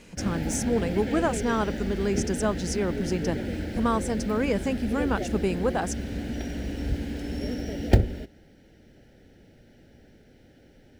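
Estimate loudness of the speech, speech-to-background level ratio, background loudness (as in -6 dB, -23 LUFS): -28.5 LUFS, 2.5 dB, -31.0 LUFS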